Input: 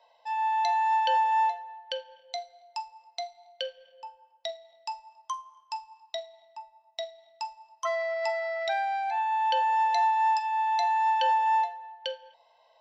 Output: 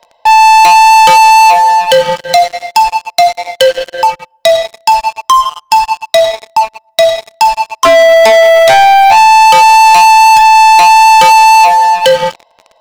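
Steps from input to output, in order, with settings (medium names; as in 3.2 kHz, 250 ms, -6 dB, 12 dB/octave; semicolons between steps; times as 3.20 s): bass shelf 480 Hz +9.5 dB; waveshaping leveller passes 5; loudness maximiser +20.5 dB; trim -1 dB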